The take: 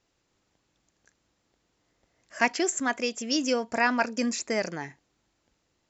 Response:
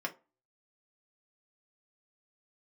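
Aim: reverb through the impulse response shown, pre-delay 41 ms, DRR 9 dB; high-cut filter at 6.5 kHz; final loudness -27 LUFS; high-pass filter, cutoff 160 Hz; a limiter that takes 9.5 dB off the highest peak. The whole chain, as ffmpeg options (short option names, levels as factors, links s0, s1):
-filter_complex "[0:a]highpass=160,lowpass=6500,alimiter=limit=0.15:level=0:latency=1,asplit=2[s0][s1];[1:a]atrim=start_sample=2205,adelay=41[s2];[s1][s2]afir=irnorm=-1:irlink=0,volume=0.237[s3];[s0][s3]amix=inputs=2:normalize=0,volume=1.33"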